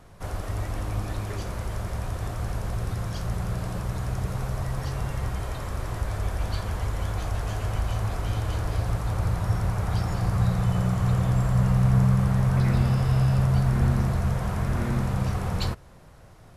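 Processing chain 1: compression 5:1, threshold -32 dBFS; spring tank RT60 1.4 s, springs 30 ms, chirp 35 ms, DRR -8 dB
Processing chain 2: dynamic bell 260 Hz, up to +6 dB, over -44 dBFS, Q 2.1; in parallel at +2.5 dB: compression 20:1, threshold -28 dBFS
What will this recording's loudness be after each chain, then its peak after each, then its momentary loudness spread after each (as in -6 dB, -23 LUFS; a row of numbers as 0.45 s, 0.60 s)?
-27.5 LUFS, -22.5 LUFS; -13.0 dBFS, -7.0 dBFS; 7 LU, 8 LU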